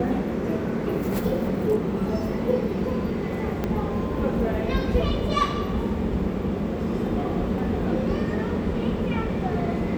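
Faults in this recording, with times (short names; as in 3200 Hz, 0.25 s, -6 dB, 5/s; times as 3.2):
3.64 pop -14 dBFS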